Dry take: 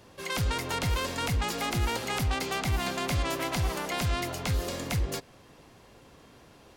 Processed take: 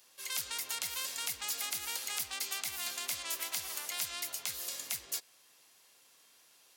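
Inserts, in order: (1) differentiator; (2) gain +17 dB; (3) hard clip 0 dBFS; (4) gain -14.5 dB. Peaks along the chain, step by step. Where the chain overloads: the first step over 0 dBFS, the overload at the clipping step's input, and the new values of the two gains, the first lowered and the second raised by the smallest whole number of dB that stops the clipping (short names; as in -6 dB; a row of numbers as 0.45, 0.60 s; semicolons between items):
-19.0, -2.0, -2.0, -16.5 dBFS; no overload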